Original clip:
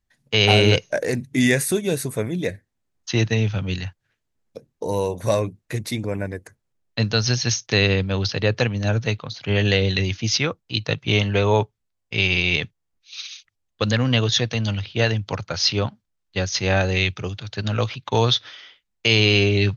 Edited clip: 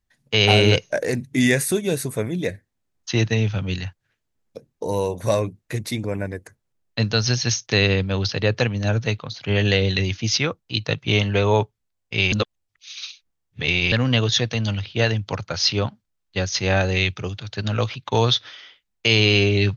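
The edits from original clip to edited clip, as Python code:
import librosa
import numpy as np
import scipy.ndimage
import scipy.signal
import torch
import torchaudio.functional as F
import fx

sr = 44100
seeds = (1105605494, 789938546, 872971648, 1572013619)

y = fx.edit(x, sr, fx.reverse_span(start_s=12.32, length_s=1.6), tone=tone)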